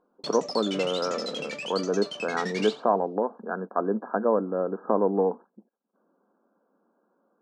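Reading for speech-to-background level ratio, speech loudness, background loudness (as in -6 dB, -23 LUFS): 7.0 dB, -27.5 LUFS, -34.5 LUFS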